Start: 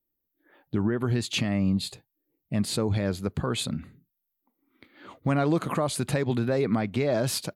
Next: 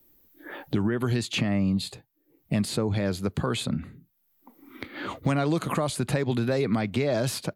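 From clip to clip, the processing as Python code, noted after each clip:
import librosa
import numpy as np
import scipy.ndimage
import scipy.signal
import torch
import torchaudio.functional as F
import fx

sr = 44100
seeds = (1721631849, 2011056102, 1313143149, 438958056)

y = fx.band_squash(x, sr, depth_pct=70)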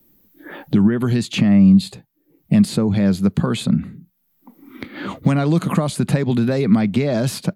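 y = fx.peak_eq(x, sr, hz=190.0, db=11.5, octaves=0.81)
y = y * 10.0 ** (3.5 / 20.0)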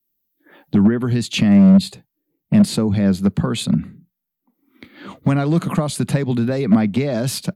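y = np.clip(x, -10.0 ** (-8.5 / 20.0), 10.0 ** (-8.5 / 20.0))
y = fx.band_widen(y, sr, depth_pct=70)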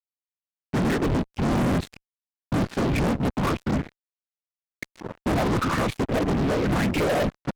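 y = fx.filter_lfo_lowpass(x, sr, shape='saw_up', hz=1.0, low_hz=420.0, high_hz=2600.0, q=4.2)
y = fx.whisperise(y, sr, seeds[0])
y = fx.fuzz(y, sr, gain_db=26.0, gate_db=-32.0)
y = y * 10.0 ** (-7.5 / 20.0)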